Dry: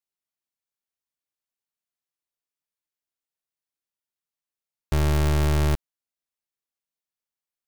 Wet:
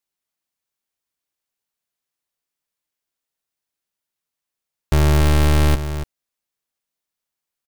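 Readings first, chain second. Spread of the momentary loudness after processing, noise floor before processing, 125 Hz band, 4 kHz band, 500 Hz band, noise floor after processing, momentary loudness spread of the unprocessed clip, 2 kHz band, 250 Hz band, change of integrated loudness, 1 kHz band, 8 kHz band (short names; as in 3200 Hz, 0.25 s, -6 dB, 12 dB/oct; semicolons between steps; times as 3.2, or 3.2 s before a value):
14 LU, under -85 dBFS, +6.0 dB, +7.5 dB, +6.0 dB, -85 dBFS, 7 LU, +7.0 dB, +6.5 dB, +6.0 dB, +6.5 dB, +6.5 dB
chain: echo 0.285 s -10.5 dB; gain +6.5 dB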